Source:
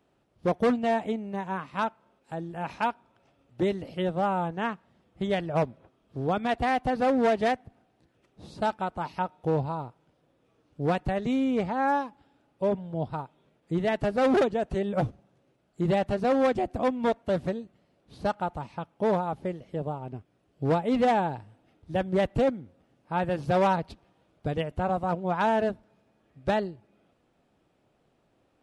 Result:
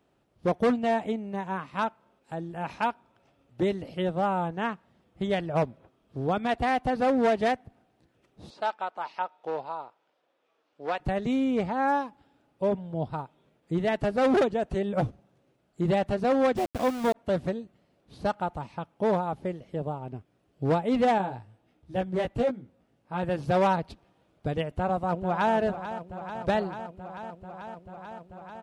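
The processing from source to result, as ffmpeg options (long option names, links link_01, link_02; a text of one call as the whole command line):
ffmpeg -i in.wav -filter_complex "[0:a]asettb=1/sr,asplit=3[link_01][link_02][link_03];[link_01]atrim=end=8.504[link_04];[link_02]atrim=start=8.5:end=11,asetpts=PTS-STARTPTS,afade=type=in:duration=0.004:curve=qsin,afade=type=out:start_time=2.496:duration=0.004:curve=qsin,highpass=590,lowpass=5400[link_05];[link_03]atrim=start=10.996[link_06];[link_04][link_05]acrossfade=duration=0.004:curve1=hsin:curve2=qsin[link_07];[link_07][link_06]acrossfade=duration=0.004:curve1=qsin:curve2=hsin,asplit=3[link_08][link_09][link_10];[link_08]afade=type=out:start_time=16.56:duration=0.02[link_11];[link_09]aeval=exprs='val(0)*gte(abs(val(0)),0.0211)':channel_layout=same,afade=type=in:start_time=16.56:duration=0.02,afade=type=out:start_time=17.14:duration=0.02[link_12];[link_10]afade=type=in:start_time=17.14:duration=0.02[link_13];[link_11][link_12][link_13]amix=inputs=3:normalize=0,asettb=1/sr,asplit=3[link_14][link_15][link_16];[link_14]atrim=end=21.184[link_17];[link_15]atrim=start=21.18:end=23.23,asetpts=PTS-STARTPTS,afade=type=in:duration=0.004:curve=qsin,afade=type=out:start_time=2.046:duration=0.004:curve=qsin,flanger=delay=15.5:depth=2.5:speed=1.4[link_18];[link_16]atrim=start=23.226[link_19];[link_17][link_18]acrossfade=duration=0.004:curve1=hsin:curve2=qsin[link_20];[link_20][link_19]acrossfade=duration=0.004:curve1=qsin:curve2=hsin,asplit=2[link_21][link_22];[link_22]afade=type=in:start_time=24.69:duration=0.01,afade=type=out:start_time=25.54:duration=0.01,aecho=0:1:440|880|1320|1760|2200|2640|3080|3520|3960|4400|4840|5280:0.266073|0.226162|0.192237|0.163402|0.138892|0.118058|0.100349|0.0852967|0.0725022|0.0616269|0.0523829|0.0445254[link_23];[link_21][link_23]amix=inputs=2:normalize=0" out.wav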